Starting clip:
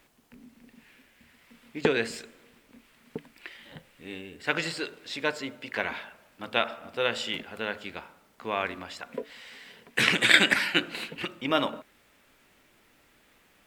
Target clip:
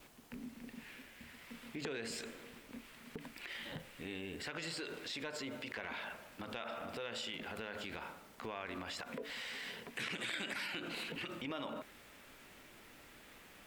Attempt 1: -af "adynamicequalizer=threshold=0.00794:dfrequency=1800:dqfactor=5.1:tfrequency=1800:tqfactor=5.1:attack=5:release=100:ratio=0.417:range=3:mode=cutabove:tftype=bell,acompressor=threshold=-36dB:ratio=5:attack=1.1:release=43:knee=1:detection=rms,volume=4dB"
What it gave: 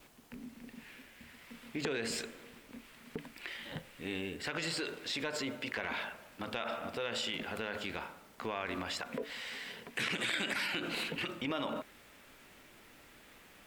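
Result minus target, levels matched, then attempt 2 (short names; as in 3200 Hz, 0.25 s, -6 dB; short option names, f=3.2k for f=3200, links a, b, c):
compressor: peak gain reduction -6 dB
-af "adynamicequalizer=threshold=0.00794:dfrequency=1800:dqfactor=5.1:tfrequency=1800:tqfactor=5.1:attack=5:release=100:ratio=0.417:range=3:mode=cutabove:tftype=bell,acompressor=threshold=-43.5dB:ratio=5:attack=1.1:release=43:knee=1:detection=rms,volume=4dB"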